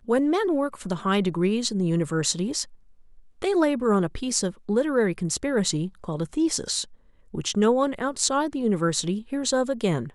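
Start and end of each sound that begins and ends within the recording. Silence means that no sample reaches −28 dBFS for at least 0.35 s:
0:03.42–0:06.83

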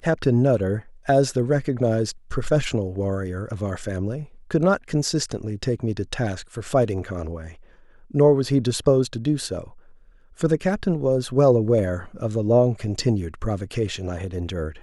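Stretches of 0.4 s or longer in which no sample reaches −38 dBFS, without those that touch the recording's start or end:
0:07.54–0:08.11
0:09.73–0:10.39

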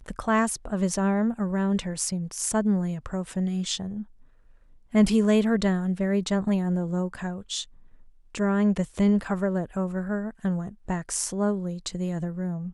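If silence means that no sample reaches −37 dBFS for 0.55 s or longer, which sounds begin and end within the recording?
0:04.94–0:07.64

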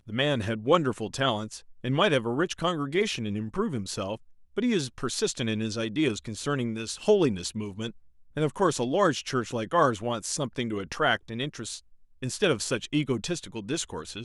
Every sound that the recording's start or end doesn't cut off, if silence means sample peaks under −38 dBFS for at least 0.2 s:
0:01.84–0:04.16
0:04.57–0:07.90
0:08.37–0:11.79

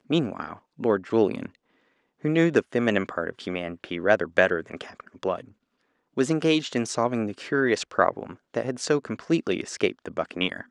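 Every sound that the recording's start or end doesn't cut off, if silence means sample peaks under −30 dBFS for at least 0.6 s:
0:02.24–0:05.40

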